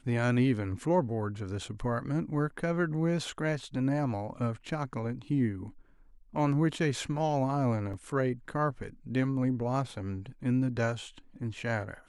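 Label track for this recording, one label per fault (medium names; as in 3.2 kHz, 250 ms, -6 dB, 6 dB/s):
7.930000	7.940000	dropout 5.4 ms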